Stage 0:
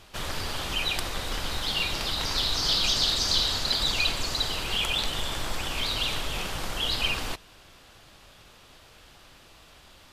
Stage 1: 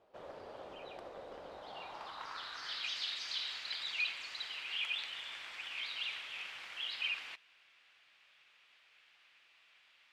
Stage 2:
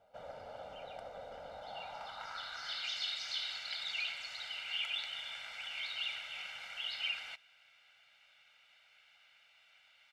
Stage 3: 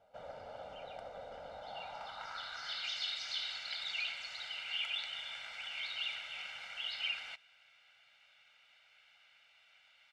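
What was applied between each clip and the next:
band-pass filter sweep 550 Hz → 2,300 Hz, 0:01.49–0:02.97; level −5.5 dB
comb filter 1.4 ms, depth 87%; level −1.5 dB
Bessel low-pass filter 9,300 Hz, order 2

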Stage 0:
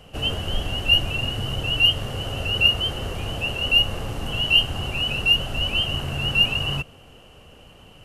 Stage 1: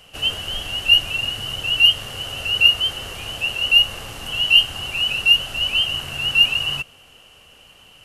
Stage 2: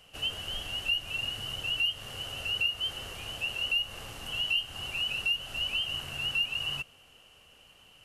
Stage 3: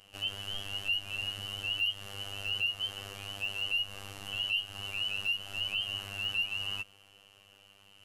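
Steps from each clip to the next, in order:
tilt shelving filter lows −7.5 dB; level −1.5 dB
downward compressor 3 to 1, threshold −19 dBFS, peak gain reduction 9 dB; level −9 dB
phases set to zero 99.4 Hz; hard clipping −21.5 dBFS, distortion −33 dB

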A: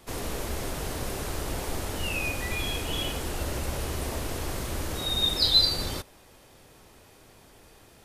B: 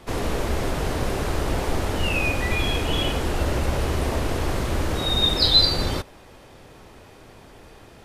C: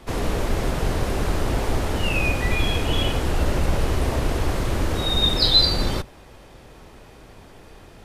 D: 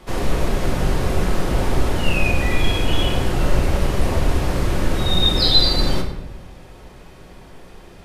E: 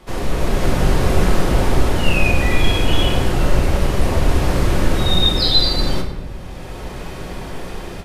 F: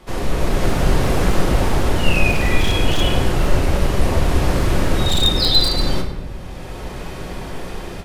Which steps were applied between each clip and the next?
low-pass filter 2,900 Hz 6 dB per octave; level +8.5 dB
sub-octave generator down 2 octaves, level +1 dB
rectangular room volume 390 cubic metres, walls mixed, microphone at 0.98 metres
automatic gain control gain up to 14 dB; level −1 dB
wavefolder on the positive side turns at −10 dBFS

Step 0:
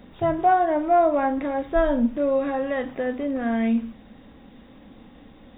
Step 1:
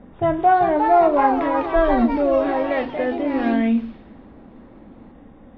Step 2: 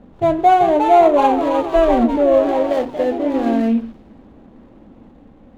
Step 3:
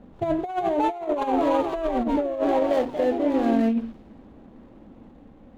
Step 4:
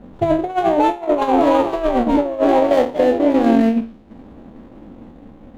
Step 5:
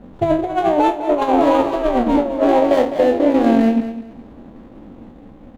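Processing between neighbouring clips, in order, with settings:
delay with pitch and tempo change per echo 427 ms, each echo +3 semitones, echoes 3, each echo −6 dB; low-pass that shuts in the quiet parts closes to 1,300 Hz, open at −18 dBFS; level +3 dB
running median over 25 samples; dynamic equaliser 520 Hz, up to +6 dB, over −28 dBFS, Q 0.78
compressor whose output falls as the input rises −16 dBFS, ratio −0.5; level −6 dB
peak hold with a decay on every bin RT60 0.48 s; transient designer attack +2 dB, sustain −8 dB; level +6.5 dB
repeating echo 206 ms, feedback 24%, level −12 dB

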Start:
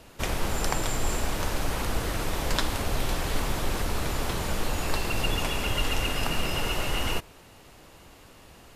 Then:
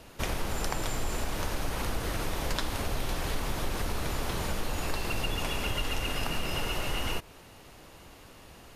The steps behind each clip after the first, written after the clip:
notch filter 7,600 Hz, Q 15
downward compressor 2.5 to 1, threshold −28 dBFS, peak gain reduction 6 dB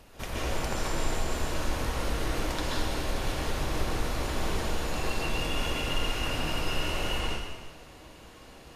echo ahead of the sound 294 ms −23.5 dB
convolution reverb RT60 1.3 s, pre-delay 118 ms, DRR −6 dB
level −5.5 dB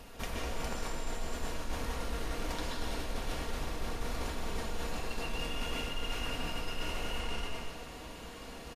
comb filter 4.3 ms, depth 35%
reversed playback
downward compressor 6 to 1, threshold −35 dBFS, peak gain reduction 15 dB
reversed playback
level +3 dB

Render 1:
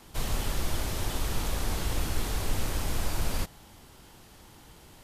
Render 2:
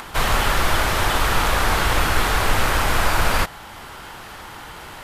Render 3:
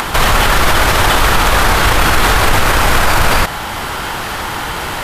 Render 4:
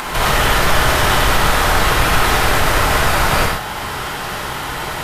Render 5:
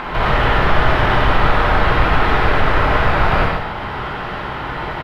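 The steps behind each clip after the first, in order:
drawn EQ curve 270 Hz 0 dB, 1,400 Hz +14 dB, 6,100 Hz +1 dB; upward compression, threshold −40 dBFS; level +8 dB
boost into a limiter +17.5 dB; level −1 dB
convolution reverb, pre-delay 3 ms, DRR −3.5 dB; level −8 dB
high-frequency loss of the air 370 metres; single-tap delay 144 ms −9 dB; level +1 dB

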